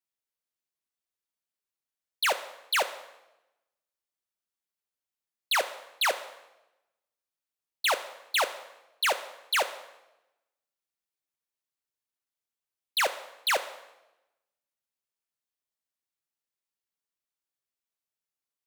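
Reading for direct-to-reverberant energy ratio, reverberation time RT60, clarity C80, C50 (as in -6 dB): 10.0 dB, 0.95 s, 15.0 dB, 13.0 dB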